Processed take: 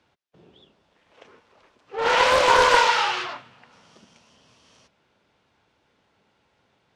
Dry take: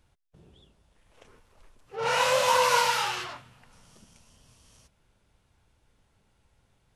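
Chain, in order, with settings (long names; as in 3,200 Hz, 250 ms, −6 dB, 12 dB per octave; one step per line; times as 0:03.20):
high-pass filter 86 Hz 12 dB per octave
three-way crossover with the lows and the highs turned down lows −12 dB, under 200 Hz, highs −24 dB, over 5,800 Hz
highs frequency-modulated by the lows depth 0.29 ms
level +6.5 dB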